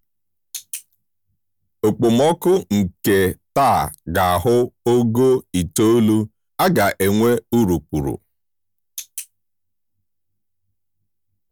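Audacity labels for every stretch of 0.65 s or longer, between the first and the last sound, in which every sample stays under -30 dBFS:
0.810000	1.840000	silence
8.160000	8.980000	silence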